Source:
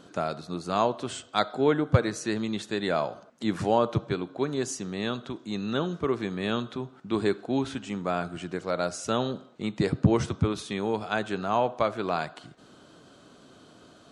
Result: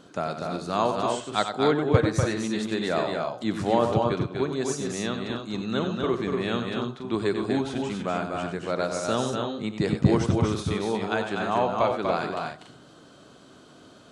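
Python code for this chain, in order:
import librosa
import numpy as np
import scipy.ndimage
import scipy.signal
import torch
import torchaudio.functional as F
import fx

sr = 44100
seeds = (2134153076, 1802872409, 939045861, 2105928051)

y = fx.echo_multitap(x, sr, ms=(94, 243, 285), db=(-8.5, -4.5, -7.5))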